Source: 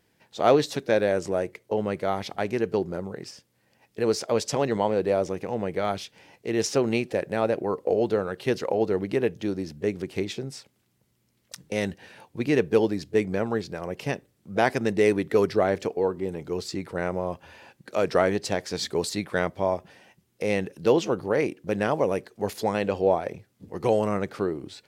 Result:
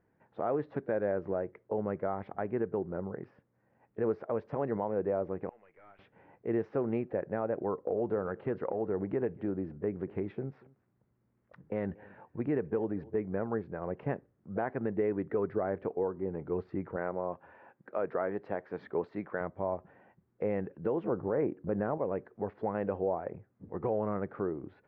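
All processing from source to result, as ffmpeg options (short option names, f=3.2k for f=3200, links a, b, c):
-filter_complex "[0:a]asettb=1/sr,asplit=3[a][b][c];[a]atrim=end=5.494[d];[b]atrim=start=5.49:end=5.99,asetpts=PTS-STARTPTS,afade=t=in:d=0.004:c=qsin,afade=t=out:st=0.496:d=0.004:c=qsin,bandpass=f=2.6k:t=q:w=3.2,aeval=exprs='(tanh(200*val(0)+0.25)-tanh(0.25))/200':c=same[e];[c]atrim=start=5.986[f];[d][e]acrossfade=d=0.004:c1=hsin:c2=qsin[g];[g][f]acrossfade=d=0.004:c1=qsin:c2=hsin,asettb=1/sr,asplit=3[h][i][j];[h]atrim=end=7.784[k];[i]atrim=start=7.78:end=13.16,asetpts=PTS-STARTPTS,afade=t=in:d=0.004:c=qsin,afade=t=out:st=5.376:d=0.004:c=qsin,acompressor=threshold=-25dB:ratio=2:attack=3.2:release=140:knee=1:detection=peak,aecho=1:1:236:0.0668,atrim=end_sample=237258[l];[j]atrim=start=13.156[m];[k][l]acrossfade=d=0.004:c1=hsin:c2=qsin[n];[n][m]acrossfade=d=0.004:c1=qsin:c2=hsin,asettb=1/sr,asplit=3[o][p][q];[o]atrim=end=16.964[r];[p]atrim=start=16.96:end=19.41,asetpts=PTS-STARTPTS,afade=t=in:d=0.004:c=qsin,afade=t=out:st=2.446:d=0.004:c=qsin,highpass=86,lowshelf=f=210:g=-9.5[s];[q]atrim=start=19.406[t];[r][s]acrossfade=d=0.004:c1=hsin:c2=qsin[u];[u][t]acrossfade=d=0.004:c1=qsin:c2=hsin,asettb=1/sr,asplit=3[v][w][x];[v]atrim=end=21.044[y];[w]atrim=start=21.04:end=21.98,asetpts=PTS-STARTPTS,afade=t=in:d=0.004:c=qsin,afade=t=out:st=0.936:d=0.004:c=qsin,lowpass=f=1.5k:p=1,acontrast=74[z];[x]atrim=start=21.976[aa];[y][z]acrossfade=d=0.004:c1=hsin:c2=qsin[ab];[ab][aa]acrossfade=d=0.004:c1=qsin:c2=hsin,lowpass=f=1.6k:w=0.5412,lowpass=f=1.6k:w=1.3066,alimiter=limit=-17.5dB:level=0:latency=1:release=311,volume=-3.5dB"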